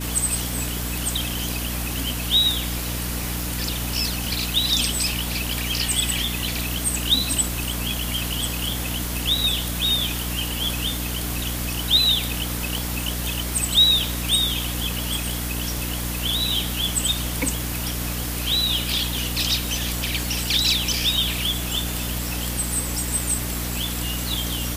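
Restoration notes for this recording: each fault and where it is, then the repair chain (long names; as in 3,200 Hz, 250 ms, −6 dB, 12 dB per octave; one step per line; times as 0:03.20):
mains hum 60 Hz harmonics 5 −29 dBFS
0:03.41: click
0:12.78: click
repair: click removal
hum removal 60 Hz, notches 5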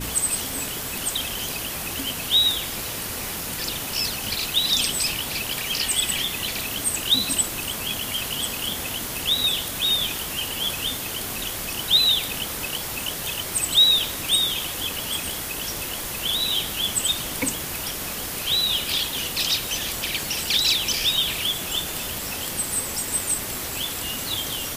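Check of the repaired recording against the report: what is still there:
none of them is left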